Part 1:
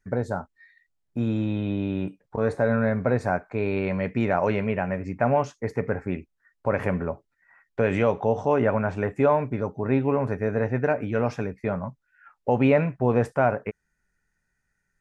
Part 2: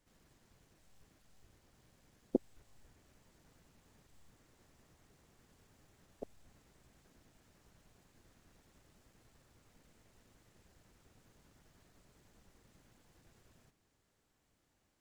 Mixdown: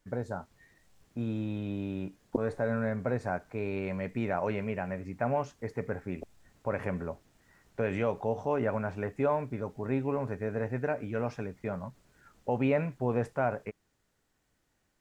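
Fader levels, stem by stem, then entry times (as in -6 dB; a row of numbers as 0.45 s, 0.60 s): -8.0 dB, +1.5 dB; 0.00 s, 0.00 s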